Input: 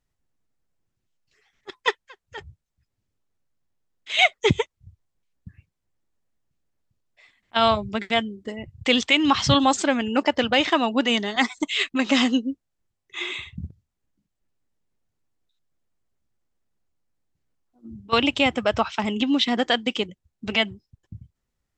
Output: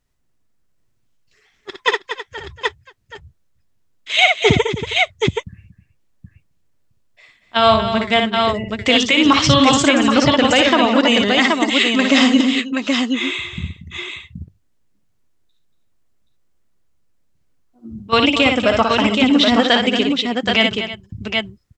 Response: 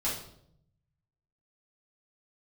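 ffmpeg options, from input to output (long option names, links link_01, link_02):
-af "bandreject=frequency=820:width=12,aecho=1:1:59|233|318|775:0.531|0.282|0.158|0.562,alimiter=level_in=7.5dB:limit=-1dB:release=50:level=0:latency=1,volume=-1dB"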